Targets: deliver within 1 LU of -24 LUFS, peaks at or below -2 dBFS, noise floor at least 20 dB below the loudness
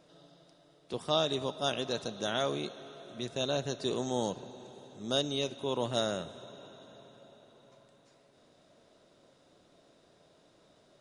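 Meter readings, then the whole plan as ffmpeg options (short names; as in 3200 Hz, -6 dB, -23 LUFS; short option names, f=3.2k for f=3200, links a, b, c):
loudness -33.5 LUFS; peak -14.5 dBFS; loudness target -24.0 LUFS
-> -af "volume=9.5dB"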